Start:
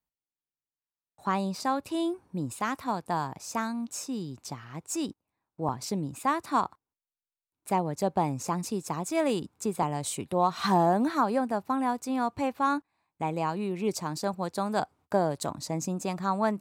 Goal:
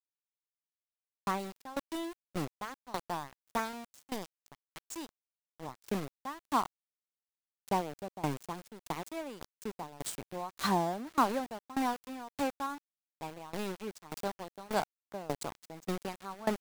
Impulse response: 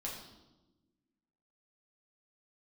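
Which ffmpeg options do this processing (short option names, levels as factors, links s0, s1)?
-af "aeval=exprs='val(0)*gte(abs(val(0)),0.0316)':c=same,aeval=exprs='val(0)*pow(10,-21*if(lt(mod(1.7*n/s,1),2*abs(1.7)/1000),1-mod(1.7*n/s,1)/(2*abs(1.7)/1000),(mod(1.7*n/s,1)-2*abs(1.7)/1000)/(1-2*abs(1.7)/1000))/20)':c=same"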